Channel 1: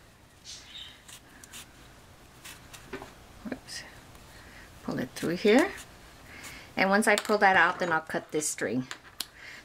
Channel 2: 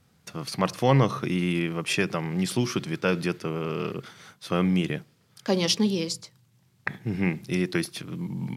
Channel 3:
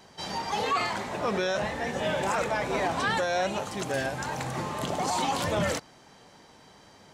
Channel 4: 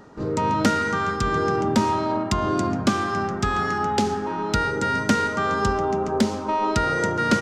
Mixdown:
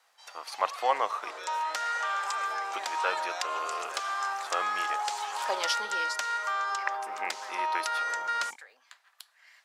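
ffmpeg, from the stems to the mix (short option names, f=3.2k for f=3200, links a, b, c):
-filter_complex "[0:a]acompressor=threshold=-29dB:ratio=6,volume=-12dB[a];[1:a]tiltshelf=f=1.3k:g=8,volume=0dB,asplit=3[b][c][d];[b]atrim=end=1.31,asetpts=PTS-STARTPTS,afade=t=out:st=1.306:d=0.004:c=hsin[e];[c]atrim=start=1.31:end=2.73,asetpts=PTS-STARTPTS,volume=0[f];[d]atrim=start=2.73,asetpts=PTS-STARTPTS,afade=t=in:d=0.004:c=hsin[g];[e][f][g]concat=n=3:v=0:a=1,asplit=2[h][i];[2:a]equalizer=f=7.7k:w=1.5:g=3,dynaudnorm=f=270:g=9:m=12.5dB,volume=-17.5dB[j];[3:a]adelay=1100,volume=-2dB[k];[i]apad=whole_len=425451[l];[a][l]sidechaincompress=threshold=-22dB:ratio=8:attack=16:release=173[m];[j][k]amix=inputs=2:normalize=0,acompressor=threshold=-25dB:ratio=4,volume=0dB[n];[m][h][n]amix=inputs=3:normalize=0,highpass=f=770:w=0.5412,highpass=f=770:w=1.3066"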